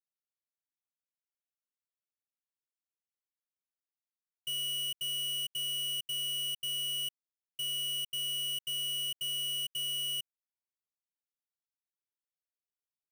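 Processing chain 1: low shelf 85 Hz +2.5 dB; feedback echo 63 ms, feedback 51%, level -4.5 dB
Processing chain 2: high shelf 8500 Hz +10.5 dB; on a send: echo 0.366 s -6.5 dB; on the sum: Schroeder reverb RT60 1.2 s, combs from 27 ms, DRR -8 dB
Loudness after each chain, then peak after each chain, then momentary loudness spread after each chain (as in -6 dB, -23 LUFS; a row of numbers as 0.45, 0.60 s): -34.5, -21.0 LUFS; -30.0, -13.5 dBFS; 5, 5 LU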